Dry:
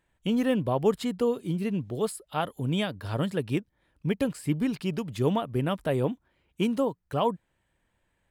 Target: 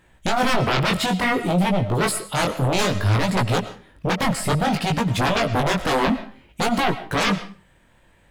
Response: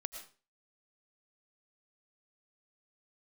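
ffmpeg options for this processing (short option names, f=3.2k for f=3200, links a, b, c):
-filter_complex "[0:a]aeval=exprs='0.237*sin(PI/2*7.08*val(0)/0.237)':c=same,flanger=delay=16.5:depth=6.7:speed=0.58,asplit=2[a][b];[1:a]atrim=start_sample=2205,highshelf=f=10k:g=-10.5[c];[b][c]afir=irnorm=-1:irlink=0,volume=1dB[d];[a][d]amix=inputs=2:normalize=0,volume=-6.5dB"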